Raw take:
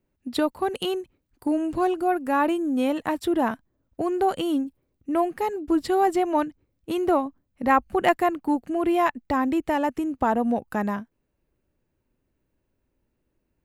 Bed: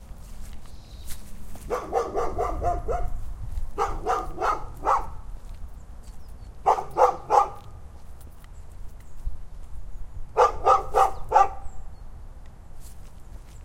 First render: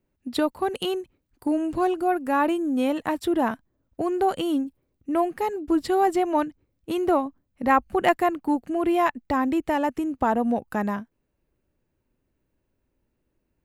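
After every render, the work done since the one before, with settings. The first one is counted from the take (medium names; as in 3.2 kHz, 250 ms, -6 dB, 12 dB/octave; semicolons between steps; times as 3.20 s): no audible change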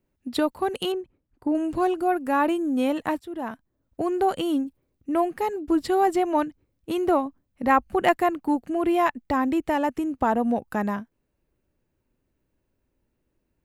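0.92–1.55 s: low-pass 1.3 kHz 6 dB/octave; 3.21–4.00 s: fade in, from -17 dB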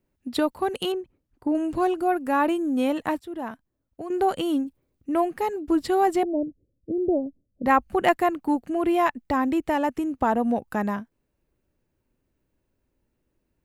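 3.31–4.10 s: fade out, to -10.5 dB; 6.23–7.66 s: steep low-pass 620 Hz 48 dB/octave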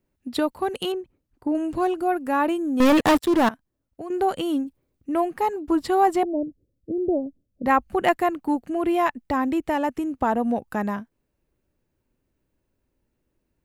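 2.80–3.49 s: waveshaping leveller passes 5; 5.35–6.25 s: peaking EQ 990 Hz +6 dB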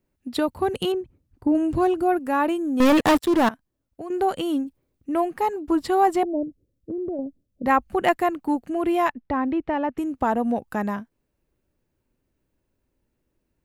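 0.48–2.19 s: peaking EQ 85 Hz +12 dB 2.8 oct; 6.43–7.19 s: compression, threshold -26 dBFS; 9.12–9.98 s: distance through air 280 m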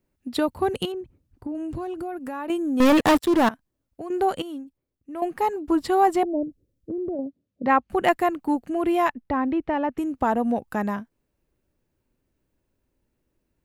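0.85–2.50 s: compression 5:1, threshold -29 dBFS; 4.42–5.22 s: gain -10.5 dB; 7.15–7.90 s: band-pass 120–4400 Hz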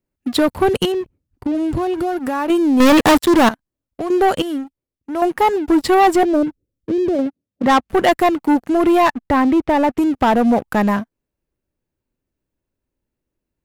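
waveshaping leveller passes 3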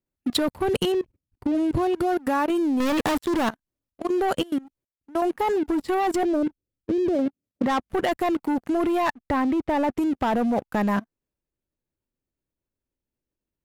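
level held to a coarse grid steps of 22 dB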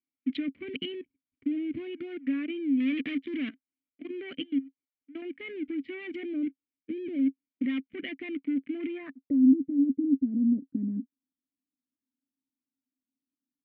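low-pass sweep 2.5 kHz -> 260 Hz, 8.91–9.46 s; vowel filter i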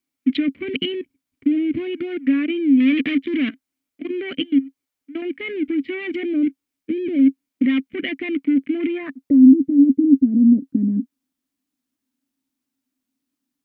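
trim +11.5 dB; peak limiter -3 dBFS, peak gain reduction 2.5 dB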